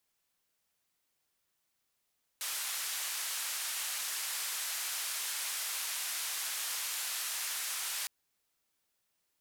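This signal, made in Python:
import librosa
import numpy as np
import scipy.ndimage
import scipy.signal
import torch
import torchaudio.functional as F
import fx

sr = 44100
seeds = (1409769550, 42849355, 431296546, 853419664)

y = fx.band_noise(sr, seeds[0], length_s=5.66, low_hz=1100.0, high_hz=13000.0, level_db=-37.0)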